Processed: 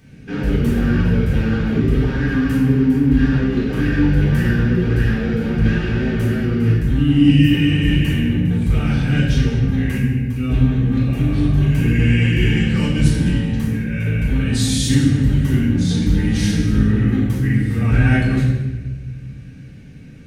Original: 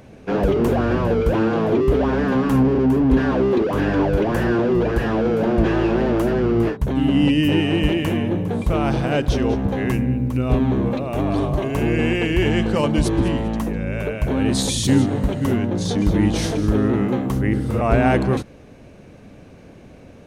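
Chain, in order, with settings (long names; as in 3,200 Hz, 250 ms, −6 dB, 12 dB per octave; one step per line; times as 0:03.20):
flat-topped bell 690 Hz −14 dB
notch comb filter 340 Hz
convolution reverb RT60 1.3 s, pre-delay 7 ms, DRR −5.5 dB
level −5 dB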